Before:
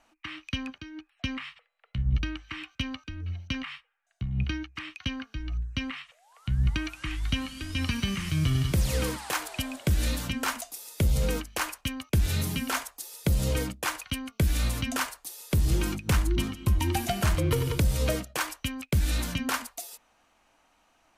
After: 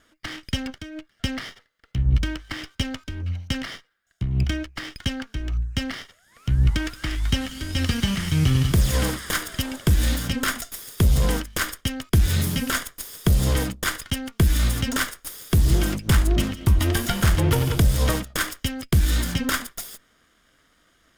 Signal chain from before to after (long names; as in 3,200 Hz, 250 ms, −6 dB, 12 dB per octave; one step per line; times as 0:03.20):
lower of the sound and its delayed copy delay 0.58 ms
level +6.5 dB